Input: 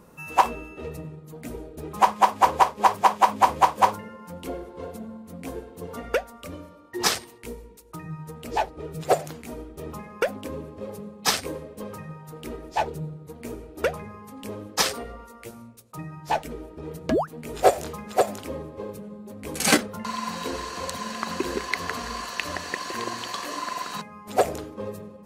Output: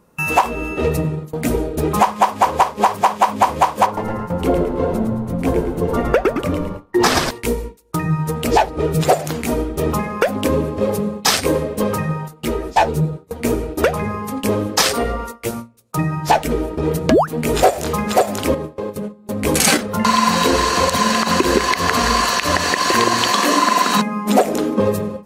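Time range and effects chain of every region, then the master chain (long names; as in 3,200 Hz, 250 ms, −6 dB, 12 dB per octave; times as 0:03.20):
0:03.86–0:07.31: high-shelf EQ 2,400 Hz −11 dB + echo with shifted repeats 109 ms, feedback 36%, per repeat −100 Hz, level −6.5 dB
0:12.28–0:13.43: double-tracking delay 18 ms −13 dB + string-ensemble chorus
0:18.54–0:19.29: high-pass filter 90 Hz + downward compressor, threshold −38 dBFS
0:23.31–0:24.80: low shelf with overshoot 150 Hz −12 dB, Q 3 + notch filter 4,700 Hz, Q 25
whole clip: noise gate with hold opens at −33 dBFS; downward compressor 6 to 1, threshold −27 dBFS; boost into a limiter +18.5 dB; level −1 dB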